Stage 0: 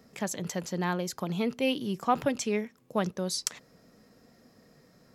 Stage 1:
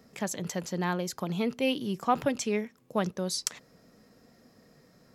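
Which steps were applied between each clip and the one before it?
no audible change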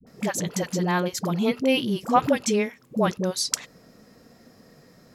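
phase dispersion highs, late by 69 ms, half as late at 460 Hz; trim +6.5 dB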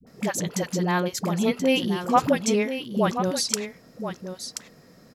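delay 1030 ms -9.5 dB

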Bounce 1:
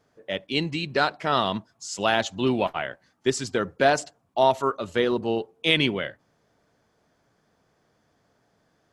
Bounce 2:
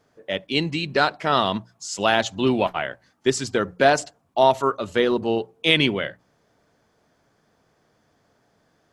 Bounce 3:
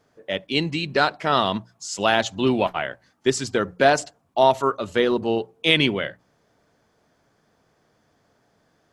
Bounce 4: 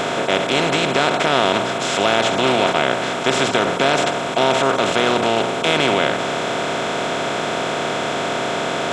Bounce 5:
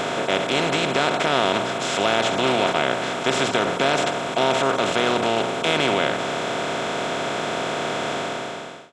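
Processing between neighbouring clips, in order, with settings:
hum notches 60/120/180 Hz; trim +3 dB
no audible change
spectral levelling over time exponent 0.2; in parallel at -1 dB: peak limiter -3.5 dBFS, peak gain reduction 9.5 dB; on the sum: trim -9.5 dB
fade out at the end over 0.79 s; trim -3.5 dB

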